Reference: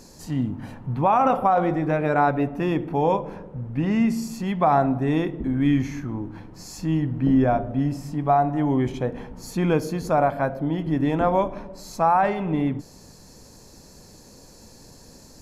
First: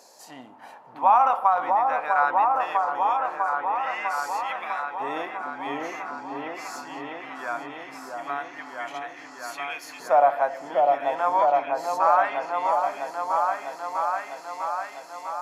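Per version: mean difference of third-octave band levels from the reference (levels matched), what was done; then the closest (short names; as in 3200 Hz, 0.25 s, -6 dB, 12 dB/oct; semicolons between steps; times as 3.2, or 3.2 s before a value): 11.0 dB: LFO high-pass saw up 0.2 Hz 670–2400 Hz; on a send: repeats that get brighter 0.65 s, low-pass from 750 Hz, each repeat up 1 oct, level 0 dB; on the sum: gain -3.5 dB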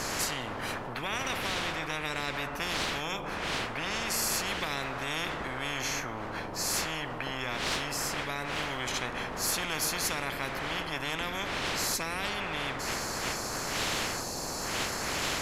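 18.0 dB: wind noise 530 Hz -31 dBFS; spectral compressor 10:1; gain -9 dB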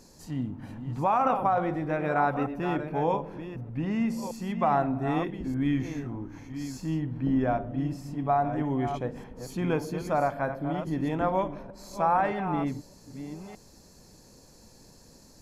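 2.5 dB: reverse delay 0.616 s, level -9 dB; dynamic EQ 1600 Hz, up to +3 dB, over -30 dBFS, Q 0.79; gain -7 dB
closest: third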